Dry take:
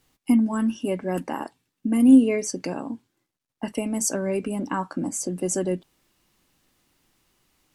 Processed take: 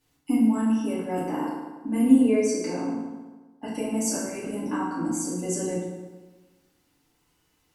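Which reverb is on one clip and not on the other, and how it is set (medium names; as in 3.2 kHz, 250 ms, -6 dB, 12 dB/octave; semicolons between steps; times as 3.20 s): FDN reverb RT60 1.3 s, low-frequency decay 1×, high-frequency decay 0.65×, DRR -8 dB; trim -10 dB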